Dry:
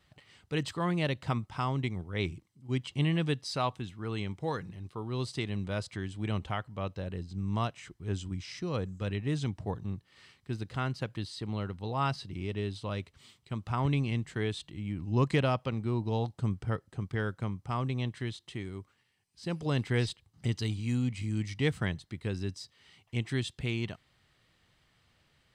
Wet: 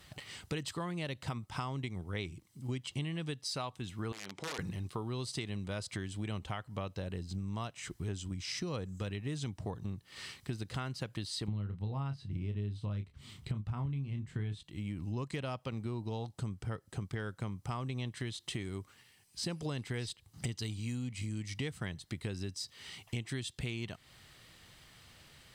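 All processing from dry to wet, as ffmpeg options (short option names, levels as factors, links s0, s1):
-filter_complex "[0:a]asettb=1/sr,asplit=3[s0][s1][s2];[s0]atrim=end=4.124[s3];[s1]atrim=start=4.12:end=4.59,asetpts=PTS-STARTPTS,afade=t=in:d=0.004:c=qsin,afade=t=out:st=0.466:d=0.004:c=qsin,aeval=exprs='(mod(22.4*val(0)+1,2)-1)/22.4':c=same,acompressor=threshold=0.00708:ratio=12:attack=3.2:release=140:knee=1:detection=peak,highpass=230,lowpass=6000[s4];[s2]atrim=start=4.586[s5];[s3][s4]acrossfade=d=0.004:c1=hsin:c2=qsin[s6];[s6][s5]acrossfade=d=0.004:c1=qsin:c2=hsin,asettb=1/sr,asplit=3[s7][s8][s9];[s7]atrim=end=11.484[s10];[s8]atrim=start=11.48:end=14.63,asetpts=PTS-STARTPTS,afade=t=in:d=0.004:c=qsin,afade=t=out:st=3.146:d=0.004:c=qsin,bass=f=250:g=13,treble=f=4000:g=-8,asplit=2[s11][s12];[s12]adelay=29,volume=0.398[s13];[s11][s13]amix=inputs=2:normalize=0,atrim=end_sample=138915[s14];[s9]atrim=start=14.626[s15];[s10][s14]acrossfade=d=0.004:c1=hsin:c2=qsin[s16];[s16][s15]acrossfade=d=0.004:c1=qsin:c2=hsin,aemphasis=mode=production:type=cd,acompressor=threshold=0.00631:ratio=12,volume=2.82"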